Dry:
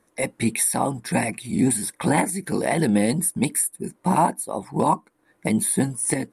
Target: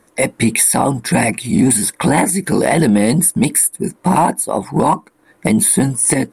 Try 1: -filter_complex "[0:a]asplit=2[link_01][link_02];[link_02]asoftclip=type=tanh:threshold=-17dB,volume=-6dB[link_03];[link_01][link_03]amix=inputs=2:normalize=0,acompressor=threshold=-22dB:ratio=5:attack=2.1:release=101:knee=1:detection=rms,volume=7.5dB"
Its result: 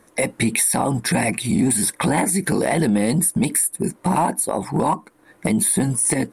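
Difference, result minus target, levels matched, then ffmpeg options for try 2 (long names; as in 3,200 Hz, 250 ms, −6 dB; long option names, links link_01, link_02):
downward compressor: peak gain reduction +6 dB
-filter_complex "[0:a]asplit=2[link_01][link_02];[link_02]asoftclip=type=tanh:threshold=-17dB,volume=-6dB[link_03];[link_01][link_03]amix=inputs=2:normalize=0,acompressor=threshold=-14.5dB:ratio=5:attack=2.1:release=101:knee=1:detection=rms,volume=7.5dB"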